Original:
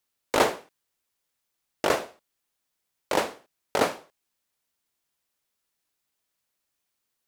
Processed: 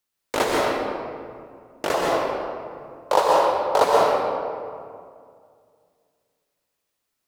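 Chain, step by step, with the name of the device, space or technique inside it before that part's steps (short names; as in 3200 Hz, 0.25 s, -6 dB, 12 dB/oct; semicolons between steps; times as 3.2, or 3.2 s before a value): 1.94–3.84 graphic EQ 250/500/1000/2000/4000 Hz -11/+8/+11/-6/+4 dB; stairwell (reverb RT60 2.2 s, pre-delay 0.115 s, DRR -3.5 dB); gain -1.5 dB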